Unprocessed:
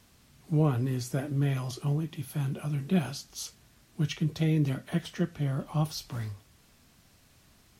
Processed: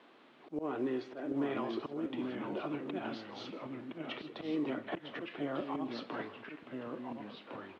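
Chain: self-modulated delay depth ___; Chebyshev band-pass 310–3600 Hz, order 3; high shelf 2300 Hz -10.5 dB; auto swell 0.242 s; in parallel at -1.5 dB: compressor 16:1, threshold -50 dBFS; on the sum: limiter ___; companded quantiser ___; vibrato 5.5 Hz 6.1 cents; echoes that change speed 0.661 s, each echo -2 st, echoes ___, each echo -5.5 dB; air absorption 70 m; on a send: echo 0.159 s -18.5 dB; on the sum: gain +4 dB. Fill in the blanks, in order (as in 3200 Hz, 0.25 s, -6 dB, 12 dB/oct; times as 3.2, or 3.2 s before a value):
0.066 ms, -30.5 dBFS, 8-bit, 2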